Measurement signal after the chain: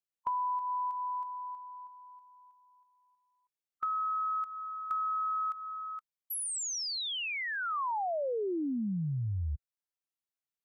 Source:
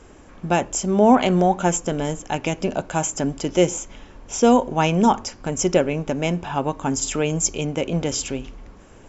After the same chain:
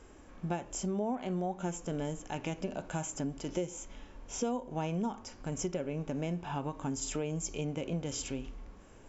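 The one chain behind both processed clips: harmonic-percussive split percussive -9 dB; compression 6:1, threshold -26 dBFS; trim -5.5 dB

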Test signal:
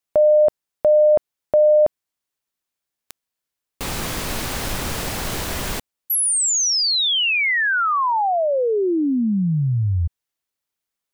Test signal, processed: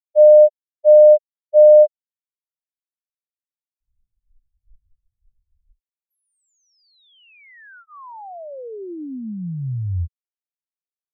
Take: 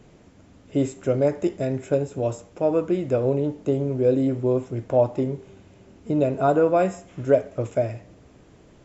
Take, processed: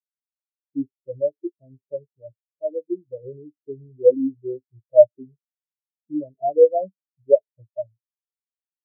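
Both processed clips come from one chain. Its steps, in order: bass shelf 110 Hz +4.5 dB; band-stop 1.3 kHz, Q 15; spectral contrast expander 4:1; trim +4.5 dB

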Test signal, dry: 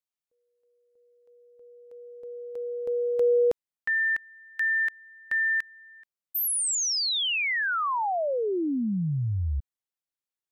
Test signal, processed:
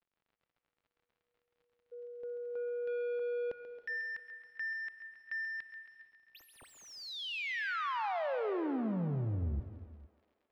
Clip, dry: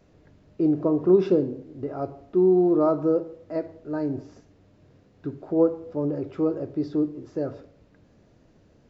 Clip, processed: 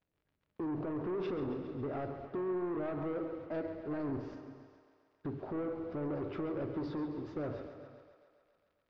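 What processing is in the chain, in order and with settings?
gate -47 dBFS, range -29 dB; treble shelf 2.4 kHz +12 dB; compression, threshold -20 dBFS; peak limiter -23.5 dBFS; saturation -33 dBFS; crackle 70 per s -56 dBFS; distance through air 330 m; thinning echo 136 ms, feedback 71%, high-pass 250 Hz, level -11 dB; gated-style reverb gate 490 ms flat, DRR 11.5 dB

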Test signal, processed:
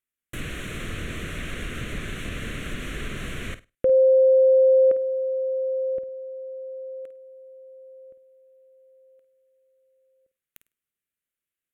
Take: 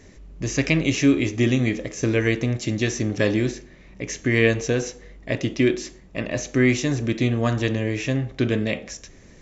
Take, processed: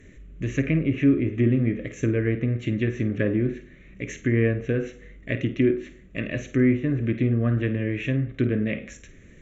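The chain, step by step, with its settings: static phaser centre 2.1 kHz, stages 4; low-pass that closes with the level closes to 1.2 kHz, closed at -18.5 dBFS; flutter echo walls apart 8.8 m, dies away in 0.24 s

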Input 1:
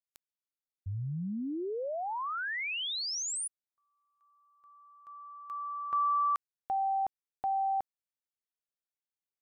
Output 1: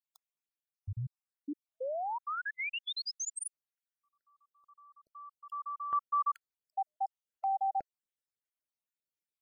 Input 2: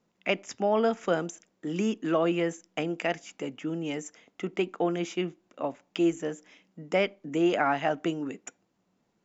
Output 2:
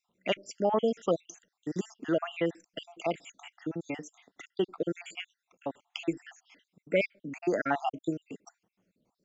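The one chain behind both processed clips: random holes in the spectrogram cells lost 61%

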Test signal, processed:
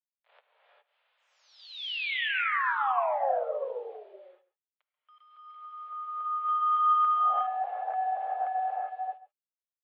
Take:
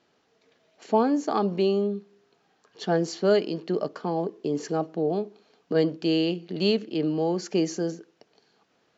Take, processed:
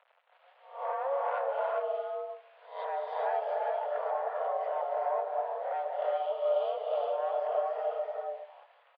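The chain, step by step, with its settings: reverse spectral sustain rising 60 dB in 0.46 s; tilt EQ -4 dB/octave; compression 6:1, threshold -23 dBFS; saturation -21 dBFS; flange 0.39 Hz, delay 4.3 ms, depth 7.7 ms, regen -57%; word length cut 10-bit, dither none; delay 137 ms -18 dB; gated-style reverb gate 440 ms rising, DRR -1 dB; mistuned SSB +270 Hz 260–3100 Hz; MP3 40 kbps 44.1 kHz

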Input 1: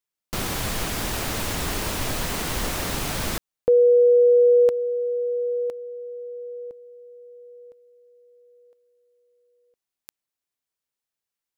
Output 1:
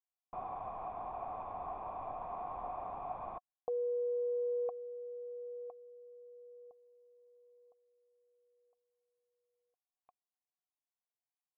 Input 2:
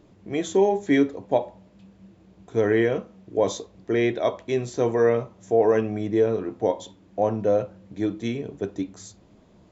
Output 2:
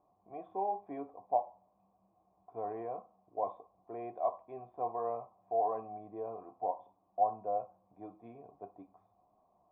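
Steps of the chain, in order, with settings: block-companded coder 7-bit; cascade formant filter a; trim +1 dB

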